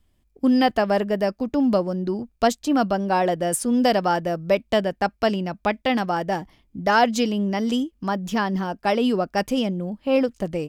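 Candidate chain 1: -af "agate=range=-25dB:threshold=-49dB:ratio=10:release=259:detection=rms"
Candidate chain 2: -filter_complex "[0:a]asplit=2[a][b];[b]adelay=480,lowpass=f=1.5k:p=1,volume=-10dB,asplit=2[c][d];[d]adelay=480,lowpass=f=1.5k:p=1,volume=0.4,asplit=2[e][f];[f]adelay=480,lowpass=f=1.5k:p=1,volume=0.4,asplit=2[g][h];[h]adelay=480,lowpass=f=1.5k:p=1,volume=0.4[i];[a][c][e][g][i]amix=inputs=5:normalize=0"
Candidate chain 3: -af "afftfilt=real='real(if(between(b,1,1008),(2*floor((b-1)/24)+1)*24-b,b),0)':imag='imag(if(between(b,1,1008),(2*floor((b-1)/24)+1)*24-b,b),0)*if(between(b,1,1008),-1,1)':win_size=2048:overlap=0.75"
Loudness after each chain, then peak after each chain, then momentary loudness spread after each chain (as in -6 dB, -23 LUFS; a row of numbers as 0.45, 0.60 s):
-22.5, -22.5, -22.5 LUFS; -6.0, -6.0, -6.0 dBFS; 7, 6, 7 LU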